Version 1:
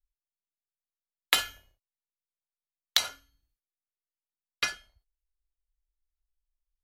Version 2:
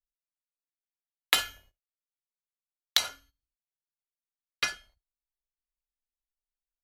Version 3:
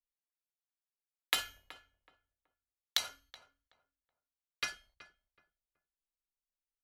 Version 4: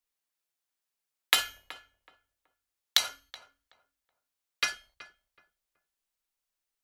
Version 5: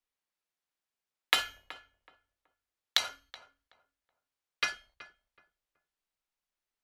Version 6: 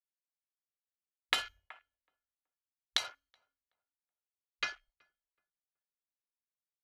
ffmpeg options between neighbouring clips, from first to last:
-af "agate=range=-15dB:threshold=-59dB:ratio=16:detection=peak"
-filter_complex "[0:a]asplit=2[a][b];[b]adelay=375,lowpass=f=1.4k:p=1,volume=-14.5dB,asplit=2[c][d];[d]adelay=375,lowpass=f=1.4k:p=1,volume=0.27,asplit=2[e][f];[f]adelay=375,lowpass=f=1.4k:p=1,volume=0.27[g];[a][c][e][g]amix=inputs=4:normalize=0,volume=-7.5dB"
-af "lowshelf=f=330:g=-7,volume=8dB"
-af "lowpass=f=3.5k:p=1"
-af "afwtdn=0.00398,volume=-4.5dB"

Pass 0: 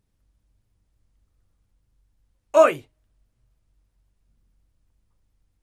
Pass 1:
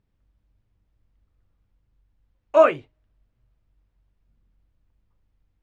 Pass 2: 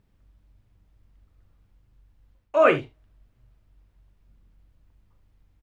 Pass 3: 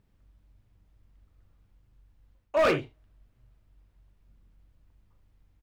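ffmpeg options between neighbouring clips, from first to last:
-af "lowpass=3.3k"
-af "areverse,acompressor=threshold=-21dB:ratio=16,areverse,aecho=1:1:41|77:0.251|0.126,volume=7dB"
-af "volume=17dB,asoftclip=hard,volume=-17dB,volume=-2dB"

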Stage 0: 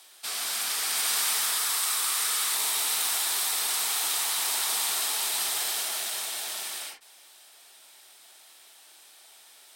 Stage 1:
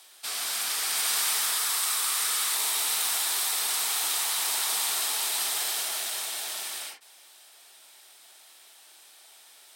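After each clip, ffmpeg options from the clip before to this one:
-af "highpass=f=160:p=1"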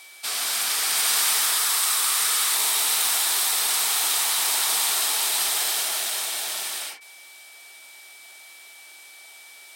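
-af "aeval=exprs='val(0)+0.00251*sin(2*PI*2300*n/s)':c=same,volume=5dB"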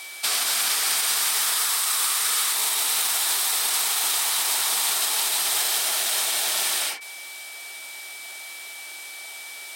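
-af "alimiter=limit=-21dB:level=0:latency=1:release=247,volume=8dB"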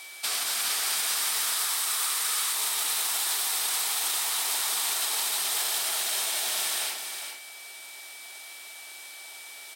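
-af "aecho=1:1:409:0.447,volume=-5.5dB"

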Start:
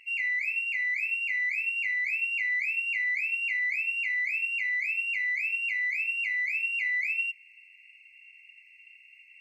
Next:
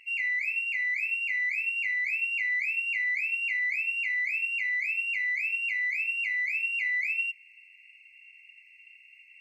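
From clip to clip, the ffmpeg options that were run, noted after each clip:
-af anull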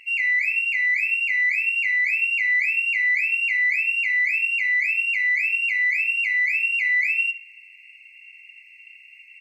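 -filter_complex "[0:a]asplit=2[a][b];[b]adelay=69,lowpass=f=3.1k:p=1,volume=-12dB,asplit=2[c][d];[d]adelay=69,lowpass=f=3.1k:p=1,volume=0.45,asplit=2[e][f];[f]adelay=69,lowpass=f=3.1k:p=1,volume=0.45,asplit=2[g][h];[h]adelay=69,lowpass=f=3.1k:p=1,volume=0.45,asplit=2[i][j];[j]adelay=69,lowpass=f=3.1k:p=1,volume=0.45[k];[a][c][e][g][i][k]amix=inputs=6:normalize=0,volume=7dB"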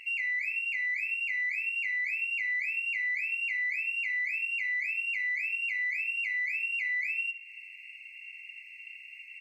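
-af "acompressor=threshold=-35dB:ratio=2.5"

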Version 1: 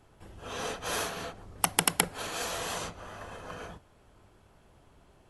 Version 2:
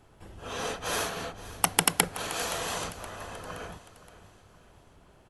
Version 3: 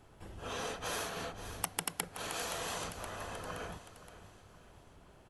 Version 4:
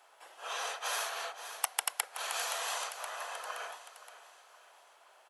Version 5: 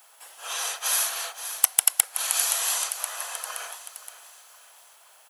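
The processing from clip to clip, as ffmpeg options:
-af "aecho=1:1:521|1042|1563|2084:0.15|0.0703|0.0331|0.0155,volume=2dB"
-af "acompressor=threshold=-36dB:ratio=2.5,volume=-1.5dB"
-af "highpass=f=650:w=0.5412,highpass=f=650:w=1.3066,volume=4dB"
-af "aemphasis=mode=production:type=riaa,asoftclip=type=hard:threshold=-3.5dB,volume=2dB"

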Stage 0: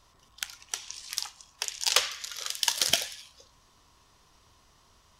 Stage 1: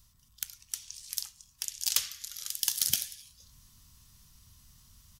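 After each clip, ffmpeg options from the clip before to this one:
-af "areverse,acompressor=mode=upward:threshold=-46dB:ratio=2.5,areverse,firequalizer=gain_entry='entry(120,0);entry(220,-4);entry(340,-20);entry(530,-23);entry(1400,-14);entry(2500,-11);entry(4400,-6);entry(14000,10)':delay=0.05:min_phase=1"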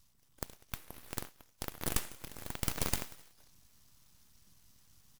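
-af "aeval=exprs='abs(val(0))':c=same,volume=-4dB"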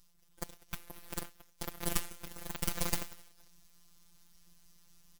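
-af "afftfilt=real='hypot(re,im)*cos(PI*b)':imag='0':win_size=1024:overlap=0.75,volume=3.5dB"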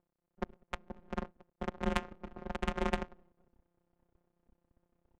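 -af "highpass=f=180:t=q:w=0.5412,highpass=f=180:t=q:w=1.307,lowpass=f=3.5k:t=q:w=0.5176,lowpass=f=3.5k:t=q:w=0.7071,lowpass=f=3.5k:t=q:w=1.932,afreqshift=-140,acrusher=bits=9:dc=4:mix=0:aa=0.000001,adynamicsmooth=sensitivity=4.5:basefreq=590,volume=9dB"

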